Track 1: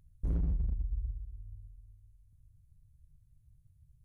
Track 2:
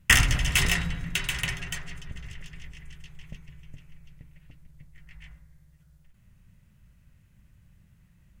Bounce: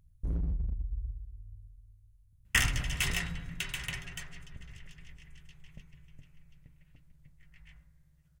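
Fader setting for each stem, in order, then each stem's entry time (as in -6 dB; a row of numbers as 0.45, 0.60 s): -1.0, -8.0 dB; 0.00, 2.45 s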